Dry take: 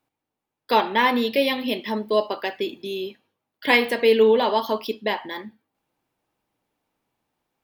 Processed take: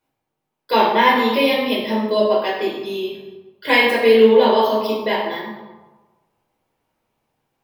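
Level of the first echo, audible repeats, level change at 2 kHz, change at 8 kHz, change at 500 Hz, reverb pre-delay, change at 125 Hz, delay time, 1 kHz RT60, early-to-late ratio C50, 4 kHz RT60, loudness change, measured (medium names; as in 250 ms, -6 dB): no echo, no echo, +4.5 dB, no reading, +5.5 dB, 6 ms, no reading, no echo, 1.3 s, 2.0 dB, 0.70 s, +5.0 dB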